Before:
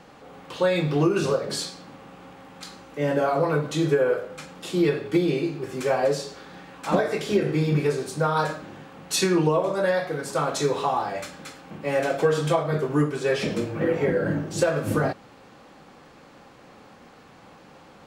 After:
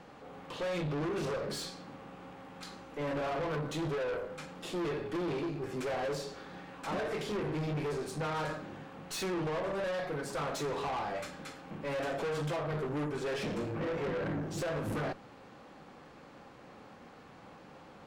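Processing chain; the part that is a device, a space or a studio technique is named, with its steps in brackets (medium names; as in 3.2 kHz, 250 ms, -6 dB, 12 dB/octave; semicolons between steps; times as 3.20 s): tube preamp driven hard (valve stage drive 30 dB, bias 0.4; treble shelf 3.8 kHz -6 dB); trim -2 dB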